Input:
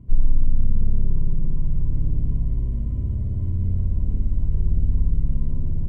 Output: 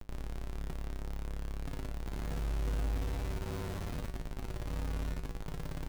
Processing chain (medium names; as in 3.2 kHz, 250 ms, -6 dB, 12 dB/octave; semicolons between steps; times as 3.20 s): 4.16–4.65 s: bass shelf 170 Hz +3.5 dB; compression 12:1, threshold -15 dBFS, peak gain reduction 8 dB; Schmitt trigger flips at -37.5 dBFS; feedback comb 54 Hz, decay 0.31 s, harmonics odd, mix 80%; trim -8.5 dB